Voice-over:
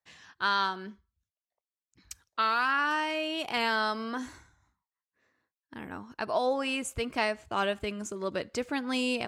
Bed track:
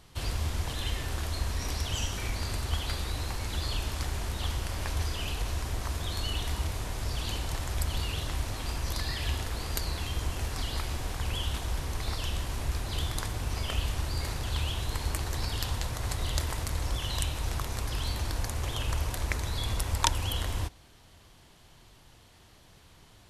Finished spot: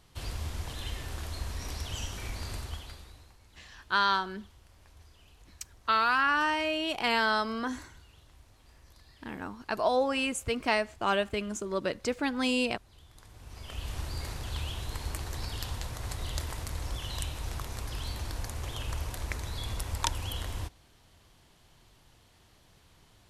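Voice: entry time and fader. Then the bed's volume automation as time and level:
3.50 s, +1.5 dB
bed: 0:02.58 −5 dB
0:03.38 −25 dB
0:13.05 −25 dB
0:13.96 −4.5 dB

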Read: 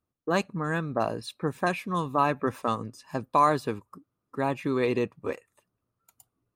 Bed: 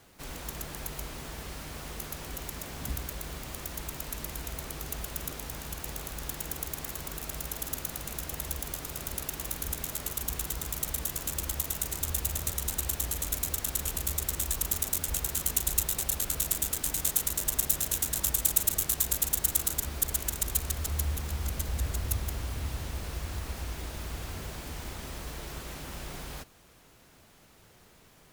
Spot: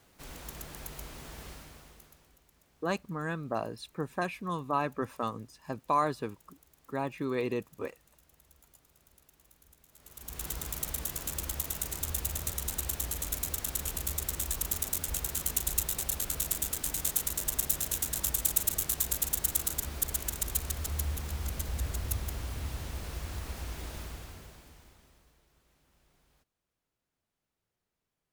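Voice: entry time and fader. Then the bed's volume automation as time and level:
2.55 s, −6.0 dB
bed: 0:01.49 −5 dB
0:02.43 −27 dB
0:09.88 −27 dB
0:10.46 −2.5 dB
0:23.98 −2.5 dB
0:25.46 −29 dB

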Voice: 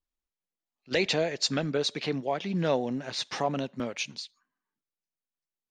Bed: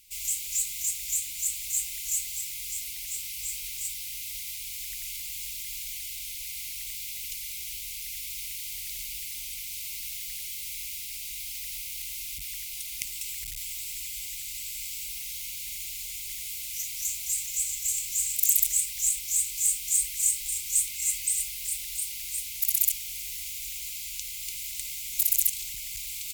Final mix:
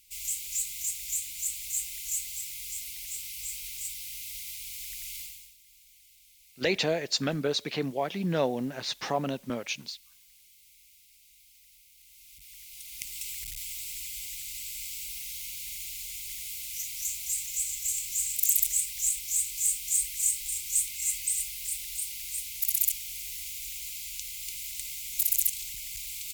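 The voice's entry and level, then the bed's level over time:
5.70 s, −0.5 dB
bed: 0:05.22 −3 dB
0:05.57 −21.5 dB
0:11.95 −21.5 dB
0:13.20 −2 dB

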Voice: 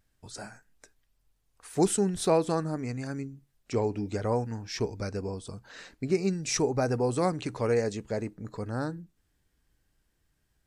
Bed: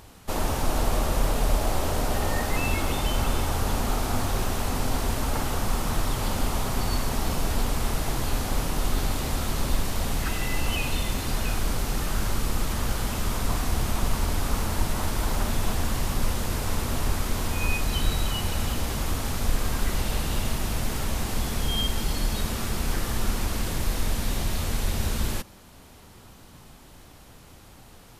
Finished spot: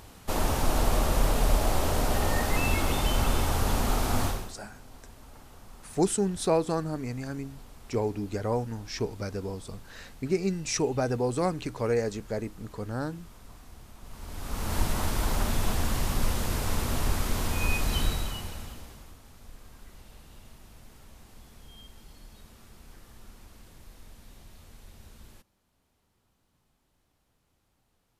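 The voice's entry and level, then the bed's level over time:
4.20 s, −0.5 dB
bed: 0:04.27 −0.5 dB
0:04.59 −23.5 dB
0:13.99 −23.5 dB
0:14.76 −1.5 dB
0:18.01 −1.5 dB
0:19.19 −24 dB

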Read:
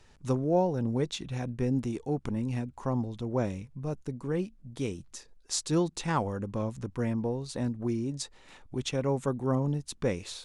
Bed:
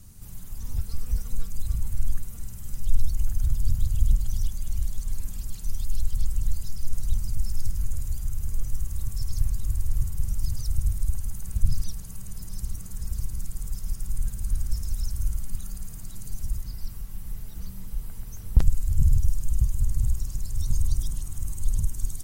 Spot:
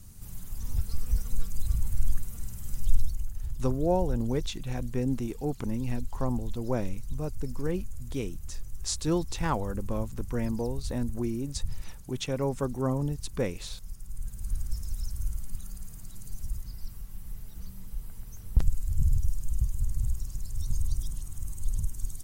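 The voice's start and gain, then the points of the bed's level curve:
3.35 s, −0.5 dB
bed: 0:02.91 −0.5 dB
0:03.33 −11 dB
0:14.07 −11 dB
0:14.51 −5 dB

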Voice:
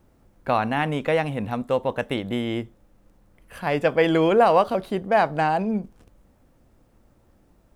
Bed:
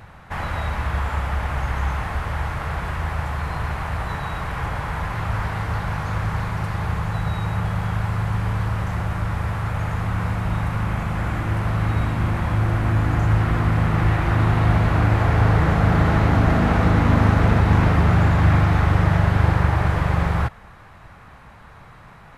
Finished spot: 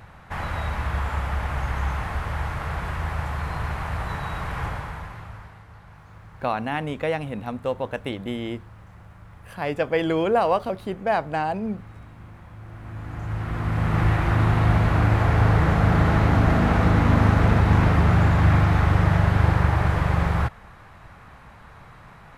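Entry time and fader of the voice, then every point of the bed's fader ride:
5.95 s, −3.5 dB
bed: 0:04.66 −2.5 dB
0:05.65 −22 dB
0:12.57 −22 dB
0:13.98 −1.5 dB

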